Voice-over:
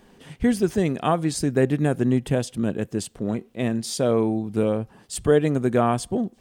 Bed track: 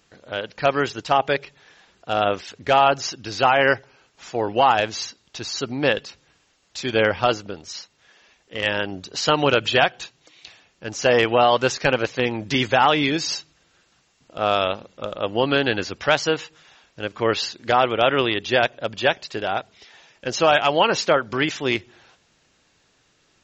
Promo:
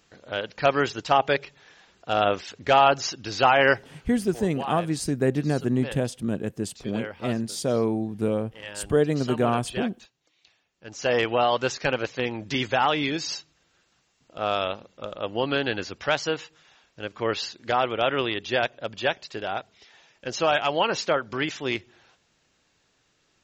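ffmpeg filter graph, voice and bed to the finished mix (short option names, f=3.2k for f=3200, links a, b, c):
-filter_complex "[0:a]adelay=3650,volume=-3dB[a];[1:a]volume=9.5dB,afade=t=out:st=4:d=0.25:silence=0.177828,afade=t=in:st=10.71:d=0.43:silence=0.281838[b];[a][b]amix=inputs=2:normalize=0"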